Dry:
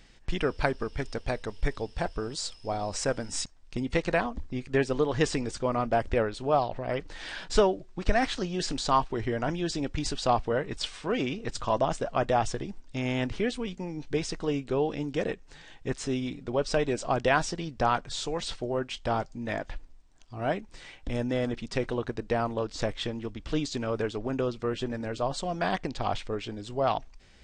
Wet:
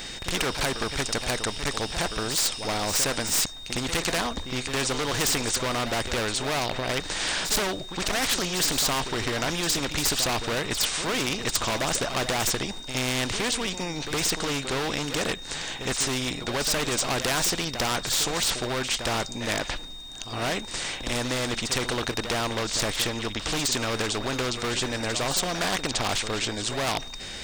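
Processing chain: high shelf 7000 Hz +11 dB; in parallel at +2 dB: limiter -20 dBFS, peak gain reduction 11 dB; on the sum: whine 3700 Hz -41 dBFS; hard clip -19 dBFS, distortion -11 dB; reverse echo 63 ms -13.5 dB; spectral compressor 2:1; gain +8 dB

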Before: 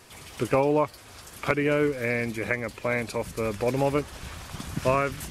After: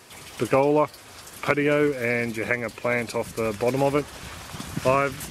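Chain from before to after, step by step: HPF 120 Hz 6 dB/oct; gain +3 dB

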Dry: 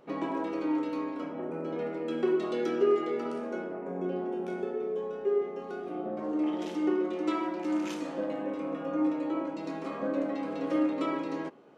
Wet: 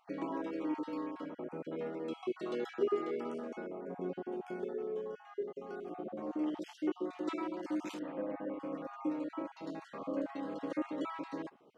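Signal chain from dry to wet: random spectral dropouts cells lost 26%; 7.99–8.6 LPF 2600 Hz 24 dB/oct; gain -5.5 dB

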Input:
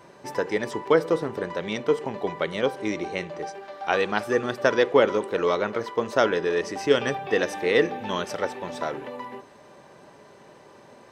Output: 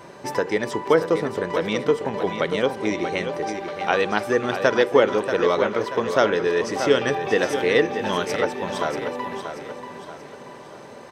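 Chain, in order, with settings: in parallel at +2 dB: compressor, threshold -32 dBFS, peak gain reduction 18 dB; on the sum: feedback echo 0.634 s, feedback 42%, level -8.5 dB

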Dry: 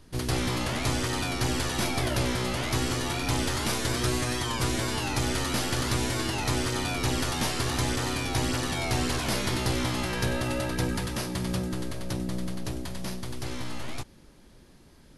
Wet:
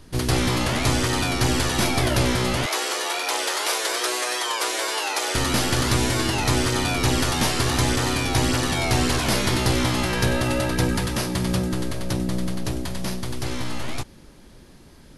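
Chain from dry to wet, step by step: 2.66–5.35 inverse Chebyshev high-pass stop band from 210 Hz, stop band 40 dB; gain +6.5 dB

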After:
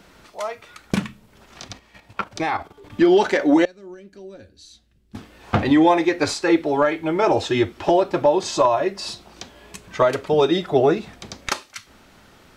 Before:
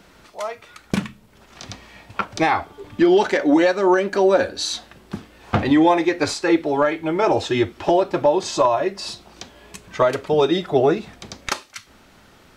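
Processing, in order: 1.64–2.9 level quantiser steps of 11 dB; 3.65–5.15 passive tone stack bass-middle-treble 10-0-1

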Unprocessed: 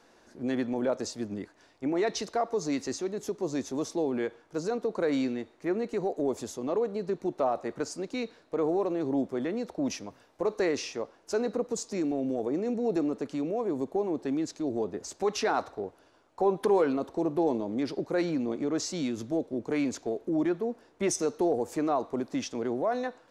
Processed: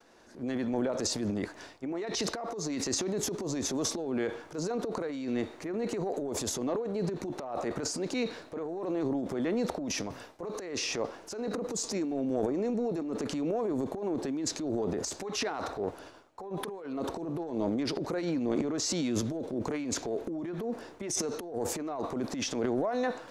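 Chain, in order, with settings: negative-ratio compressor -31 dBFS, ratio -0.5; expander -54 dBFS; transient shaper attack -5 dB, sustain +10 dB

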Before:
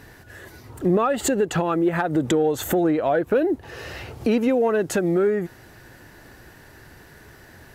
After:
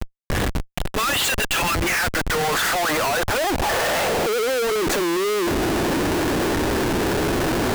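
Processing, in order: high-pass sweep 3200 Hz -> 290 Hz, 1.37–5.07; overdrive pedal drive 24 dB, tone 1200 Hz, clips at -6 dBFS; Schmitt trigger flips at -33.5 dBFS; gain -1.5 dB

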